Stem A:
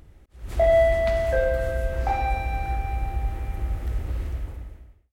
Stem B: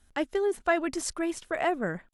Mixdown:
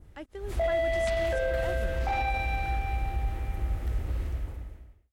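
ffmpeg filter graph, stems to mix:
ffmpeg -i stem1.wav -i stem2.wav -filter_complex "[0:a]adynamicequalizer=threshold=0.00562:dfrequency=3200:dqfactor=0.94:tfrequency=3200:tqfactor=0.94:attack=5:release=100:ratio=0.375:range=4:mode=boostabove:tftype=bell,alimiter=limit=-18dB:level=0:latency=1:release=15,volume=-2.5dB[link_01];[1:a]volume=-13.5dB[link_02];[link_01][link_02]amix=inputs=2:normalize=0" out.wav

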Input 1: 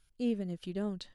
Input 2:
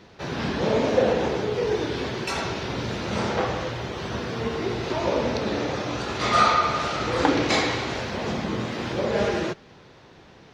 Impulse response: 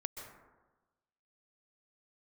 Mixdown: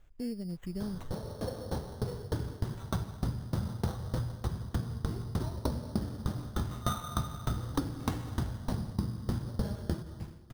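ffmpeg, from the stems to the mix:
-filter_complex "[0:a]lowshelf=frequency=480:gain=9,acompressor=threshold=-42dB:ratio=2,volume=0dB,asplit=2[link_01][link_02];[1:a]lowpass=frequency=1600:width=0.5412,lowpass=frequency=1600:width=1.3066,acrusher=bits=8:mix=0:aa=0.000001,aeval=exprs='val(0)*pow(10,-34*if(lt(mod(3.3*n/s,1),2*abs(3.3)/1000),1-mod(3.3*n/s,1)/(2*abs(3.3)/1000),(mod(3.3*n/s,1)-2*abs(3.3)/1000)/(1-2*abs(3.3)/1000))/20)':channel_layout=same,adelay=500,volume=0dB,asplit=2[link_03][link_04];[link_04]volume=-9.5dB[link_05];[link_02]apad=whole_len=486532[link_06];[link_03][link_06]sidechaincompress=threshold=-58dB:ratio=8:attack=16:release=959[link_07];[2:a]atrim=start_sample=2205[link_08];[link_05][link_08]afir=irnorm=-1:irlink=0[link_09];[link_01][link_07][link_09]amix=inputs=3:normalize=0,asubboost=boost=11:cutoff=140,acrusher=samples=9:mix=1:aa=0.000001,acompressor=threshold=-28dB:ratio=10"

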